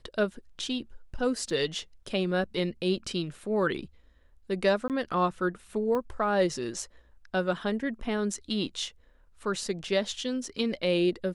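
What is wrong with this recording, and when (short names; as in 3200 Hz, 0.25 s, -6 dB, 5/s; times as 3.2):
1.5 gap 2.6 ms
4.88–4.9 gap 18 ms
5.95 pop -20 dBFS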